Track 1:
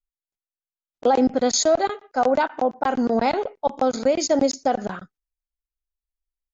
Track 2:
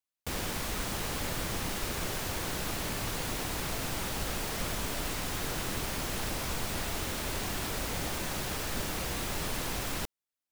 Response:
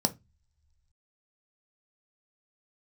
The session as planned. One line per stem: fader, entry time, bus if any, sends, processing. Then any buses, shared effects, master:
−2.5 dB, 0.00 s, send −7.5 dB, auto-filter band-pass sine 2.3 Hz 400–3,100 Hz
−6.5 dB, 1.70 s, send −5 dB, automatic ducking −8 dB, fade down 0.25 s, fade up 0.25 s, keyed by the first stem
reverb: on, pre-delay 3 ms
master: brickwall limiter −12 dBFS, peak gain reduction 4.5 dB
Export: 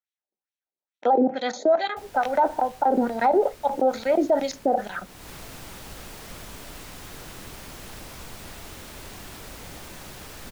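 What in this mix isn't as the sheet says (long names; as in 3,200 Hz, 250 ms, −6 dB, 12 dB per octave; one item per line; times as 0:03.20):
stem 1 −2.5 dB → +5.5 dB
stem 2: send off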